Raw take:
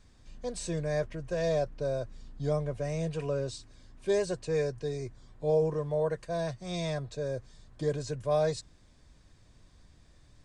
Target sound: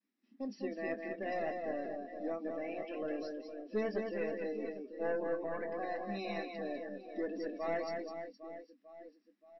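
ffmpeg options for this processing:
-filter_complex "[0:a]asplit=2[a][b];[b]adelay=26,volume=-9dB[c];[a][c]amix=inputs=2:normalize=0,agate=range=-33dB:threshold=-52dB:ratio=3:detection=peak,afftfilt=real='re*between(b*sr/4096,180,5300)':imag='im*between(b*sr/4096,180,5300)':win_size=4096:overlap=0.75,aeval=exprs='(tanh(12.6*val(0)+0.15)-tanh(0.15))/12.6':c=same,equalizer=f=250:t=o:w=1:g=7,equalizer=f=500:t=o:w=1:g=-9,equalizer=f=1k:t=o:w=1:g=-4,equalizer=f=2k:t=o:w=1:g=3,equalizer=f=4k:t=o:w=1:g=-7,aecho=1:1:220|506|877.8|1361|1989:0.631|0.398|0.251|0.158|0.1,afftdn=nr=15:nf=-45,asetrate=48000,aresample=44100,volume=-1dB"

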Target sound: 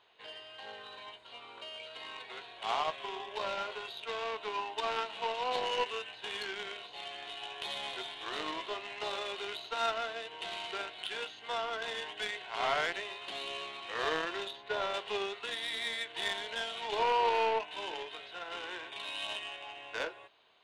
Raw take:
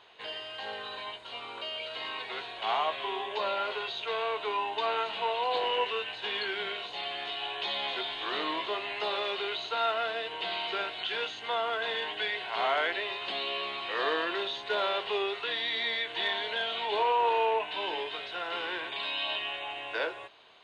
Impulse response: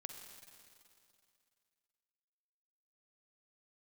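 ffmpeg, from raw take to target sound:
-filter_complex "[0:a]aeval=exprs='0.133*(cos(1*acos(clip(val(0)/0.133,-1,1)))-cos(1*PI/2))+0.0211*(cos(3*acos(clip(val(0)/0.133,-1,1)))-cos(3*PI/2))+0.00335*(cos(7*acos(clip(val(0)/0.133,-1,1)))-cos(7*PI/2))':c=same,asettb=1/sr,asplit=3[a][b][c];[a]atrim=end=14.514[d];[b]atrim=start=14.51:end=14.94,asetpts=PTS-STARTPTS,afade=t=in:d=0.004:c=qsin,afade=t=out:st=0.426:d=0.004:c=qsin,highshelf=f=4.6k:g=-11.5[e];[c]atrim=start=14.936[f];[d][e]acrossfade=d=0.004:c1=hsin:c2=qsin[g];[g][f]acrossfade=d=0.004:c1=qsin:c2=hsin"

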